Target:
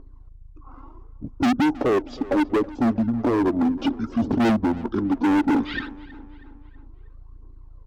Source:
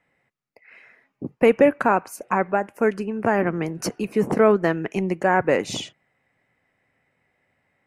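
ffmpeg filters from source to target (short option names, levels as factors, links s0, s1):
-filter_complex "[0:a]aphaser=in_gain=1:out_gain=1:delay=2.2:decay=0.62:speed=0.67:type=triangular,acrossover=split=9800[s0][s1];[s1]acompressor=threshold=0.00158:ratio=4:attack=1:release=60[s2];[s0][s2]amix=inputs=2:normalize=0,equalizer=f=380:w=0.43:g=12.5,acrossover=split=630[s3][s4];[s4]acompressor=threshold=0.126:ratio=6[s5];[s3][s5]amix=inputs=2:normalize=0,aeval=exprs='val(0)+0.0447*(sin(2*PI*50*n/s)+sin(2*PI*2*50*n/s)/2+sin(2*PI*3*50*n/s)/3+sin(2*PI*4*50*n/s)/4+sin(2*PI*5*50*n/s)/5)':c=same,asetrate=23361,aresample=44100,atempo=1.88775,lowshelf=f=210:t=q:w=3:g=-10.5,asoftclip=type=hard:threshold=0.211,asplit=2[s6][s7];[s7]adelay=320,lowpass=f=3900:p=1,volume=0.112,asplit=2[s8][s9];[s9]adelay=320,lowpass=f=3900:p=1,volume=0.51,asplit=2[s10][s11];[s11]adelay=320,lowpass=f=3900:p=1,volume=0.51,asplit=2[s12][s13];[s13]adelay=320,lowpass=f=3900:p=1,volume=0.51[s14];[s6][s8][s10][s12][s14]amix=inputs=5:normalize=0,volume=0.668"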